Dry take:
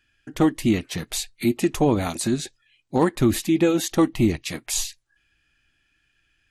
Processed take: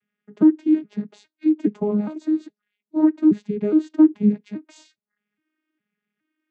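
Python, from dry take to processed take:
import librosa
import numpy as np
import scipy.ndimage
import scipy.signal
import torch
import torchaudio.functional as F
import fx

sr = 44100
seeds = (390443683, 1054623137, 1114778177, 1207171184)

y = fx.vocoder_arp(x, sr, chord='bare fifth', root=56, every_ms=413)
y = fx.tilt_eq(y, sr, slope=-3.0)
y = F.gain(torch.from_numpy(y), -2.0).numpy()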